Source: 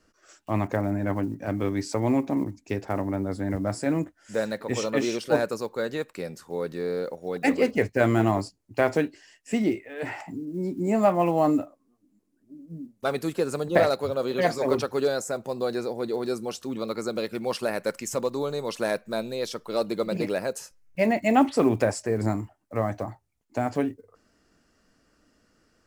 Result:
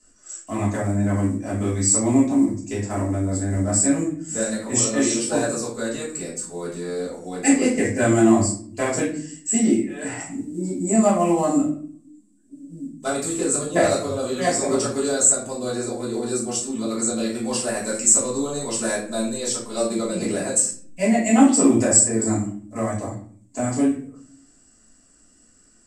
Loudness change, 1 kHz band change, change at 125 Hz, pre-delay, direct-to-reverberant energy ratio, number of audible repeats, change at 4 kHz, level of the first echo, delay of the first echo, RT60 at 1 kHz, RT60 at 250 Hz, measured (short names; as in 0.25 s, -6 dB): +6.0 dB, +1.5 dB, +4.5 dB, 3 ms, -8.5 dB, none, +5.0 dB, none, none, 0.45 s, 1.0 s